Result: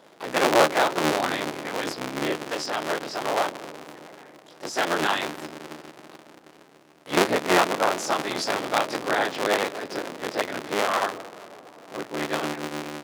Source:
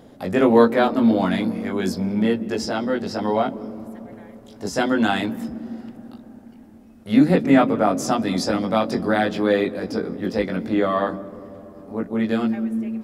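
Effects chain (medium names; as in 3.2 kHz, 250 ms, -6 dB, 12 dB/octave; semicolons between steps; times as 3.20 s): cycle switcher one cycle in 3, inverted; frequency weighting A; trim -2 dB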